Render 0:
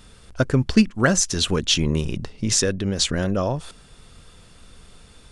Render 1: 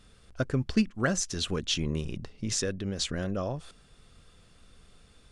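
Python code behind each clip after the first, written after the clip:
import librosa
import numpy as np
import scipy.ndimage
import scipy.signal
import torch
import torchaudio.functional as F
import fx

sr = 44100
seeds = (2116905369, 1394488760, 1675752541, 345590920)

y = fx.high_shelf(x, sr, hz=9200.0, db=-5.5)
y = fx.notch(y, sr, hz=920.0, q=12.0)
y = F.gain(torch.from_numpy(y), -9.0).numpy()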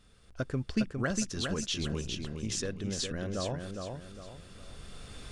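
y = fx.recorder_agc(x, sr, target_db=-20.5, rise_db_per_s=8.3, max_gain_db=30)
y = fx.echo_feedback(y, sr, ms=408, feedback_pct=36, wet_db=-5.0)
y = F.gain(torch.from_numpy(y), -5.0).numpy()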